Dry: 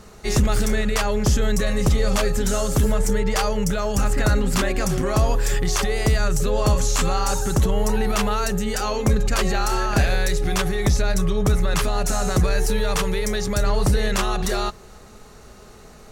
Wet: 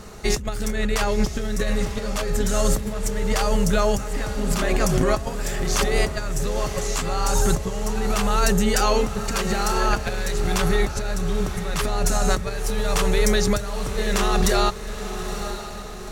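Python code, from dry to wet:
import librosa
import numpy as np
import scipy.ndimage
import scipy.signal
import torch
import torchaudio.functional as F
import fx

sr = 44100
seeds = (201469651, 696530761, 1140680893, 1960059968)

p1 = fx.over_compress(x, sr, threshold_db=-22.0, ratio=-0.5)
p2 = p1 + fx.echo_diffused(p1, sr, ms=925, feedback_pct=44, wet_db=-10, dry=0)
y = p2 * librosa.db_to_amplitude(1.0)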